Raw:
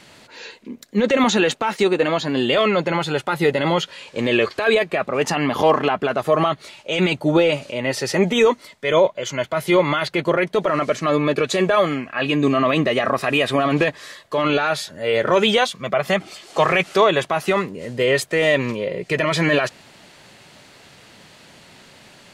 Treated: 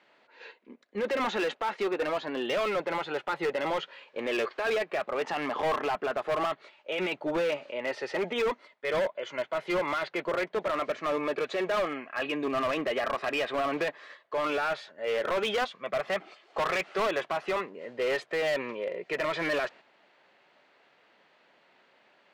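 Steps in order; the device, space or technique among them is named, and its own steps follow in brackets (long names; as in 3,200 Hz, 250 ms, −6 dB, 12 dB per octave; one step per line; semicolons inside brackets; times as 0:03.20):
walkie-talkie (band-pass filter 410–2,400 Hz; hard clipping −18 dBFS, distortion −10 dB; noise gate −41 dBFS, range −6 dB)
level −6.5 dB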